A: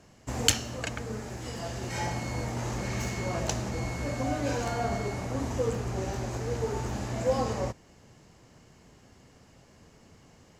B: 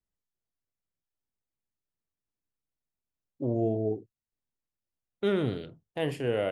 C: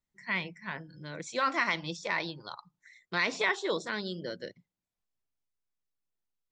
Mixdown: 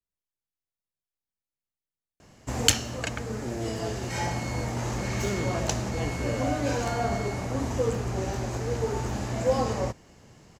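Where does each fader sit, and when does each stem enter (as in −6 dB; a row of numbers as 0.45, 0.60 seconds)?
+2.5 dB, −6.0 dB, muted; 2.20 s, 0.00 s, muted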